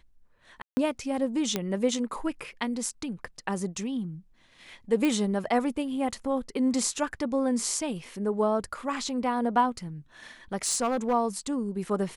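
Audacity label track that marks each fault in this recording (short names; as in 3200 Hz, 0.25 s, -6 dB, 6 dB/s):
0.620000	0.770000	gap 0.15 s
1.560000	1.560000	pop -12 dBFS
5.050000	5.050000	pop -15 dBFS
10.640000	11.140000	clipped -20.5 dBFS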